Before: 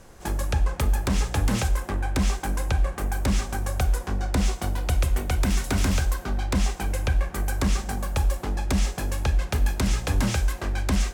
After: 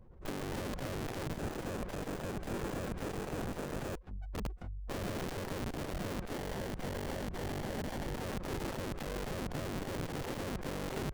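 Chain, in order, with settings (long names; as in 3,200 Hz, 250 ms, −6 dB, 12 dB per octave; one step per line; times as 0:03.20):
automatic gain control gain up to 10.5 dB
gate on every frequency bin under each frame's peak −15 dB strong
0:03.95–0:04.90: first-order pre-emphasis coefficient 0.9
downward compressor 3 to 1, threshold −19 dBFS, peak gain reduction 9 dB
wrap-around overflow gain 26.5 dB
0:01.33–0:04.02: time-frequency box erased 2,400–6,700 Hz
0:06.33–0:08.15: parametric band 580 Hz −9.5 dB 1 octave
windowed peak hold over 33 samples
level −5.5 dB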